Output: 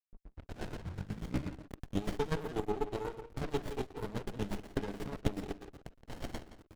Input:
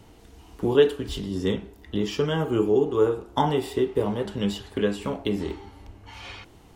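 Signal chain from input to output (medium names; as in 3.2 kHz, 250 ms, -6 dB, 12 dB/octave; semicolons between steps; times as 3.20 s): tape start-up on the opening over 2.04 s; tilt EQ +3 dB/octave; hum notches 50/100/150/200 Hz; compression 3:1, threshold -37 dBFS, peak gain reduction 14 dB; square tremolo 8.2 Hz, depth 65%, duty 30%; rippled EQ curve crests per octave 1.7, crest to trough 7 dB; hysteresis with a dead band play -42.5 dBFS; speakerphone echo 170 ms, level -11 dB; sliding maximum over 33 samples; trim +5 dB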